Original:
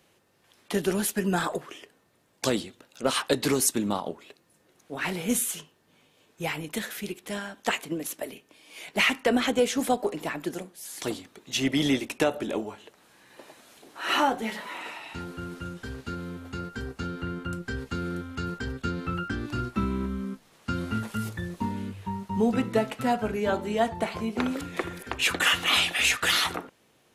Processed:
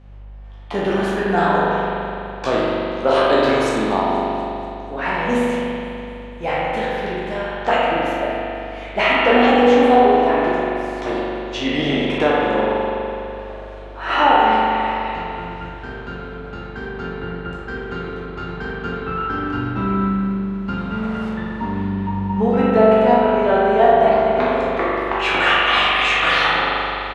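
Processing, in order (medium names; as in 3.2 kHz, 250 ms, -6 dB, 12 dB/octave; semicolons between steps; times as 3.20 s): spectral sustain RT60 0.66 s; low-pass 4 kHz 12 dB/octave; peaking EQ 800 Hz +10 dB 2.2 oct; hum 50 Hz, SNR 21 dB; on a send: feedback delay 241 ms, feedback 60%, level -20 dB; on the sum: spring tank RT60 2.9 s, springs 41 ms, chirp 20 ms, DRR -4 dB; trim -3 dB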